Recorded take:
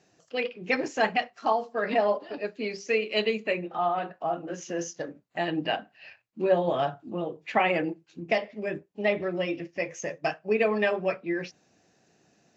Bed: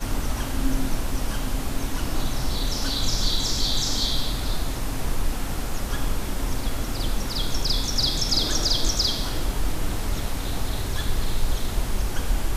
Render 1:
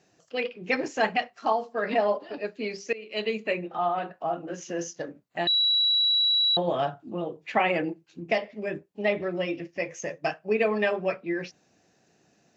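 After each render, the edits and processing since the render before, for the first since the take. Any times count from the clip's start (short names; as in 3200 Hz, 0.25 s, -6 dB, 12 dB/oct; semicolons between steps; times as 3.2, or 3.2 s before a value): 2.93–3.39 fade in, from -21.5 dB; 5.47–6.57 bleep 3910 Hz -19.5 dBFS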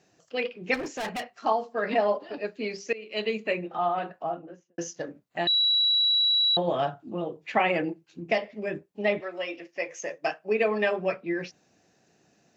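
0.74–1.32 overloaded stage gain 29.5 dB; 4.1–4.78 studio fade out; 9.19–10.97 HPF 680 Hz -> 160 Hz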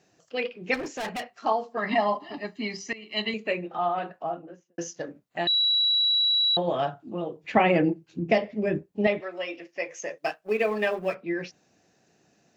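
1.77–3.34 comb 1 ms, depth 97%; 7.44–9.07 low shelf 410 Hz +11.5 dB; 10.18–11.15 G.711 law mismatch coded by A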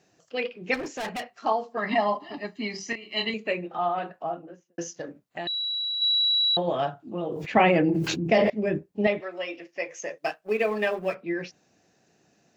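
2.72–3.3 doubler 26 ms -4.5 dB; 4.89–6.02 compressor 4:1, threshold -29 dBFS; 7.14–8.5 sustainer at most 26 dB/s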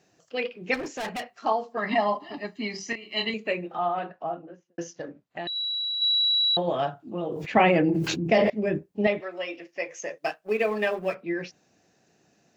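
3.79–5.56 air absorption 87 m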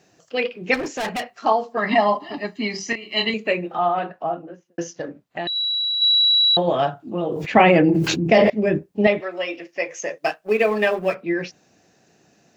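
gain +6.5 dB; limiter -2 dBFS, peak gain reduction 1.5 dB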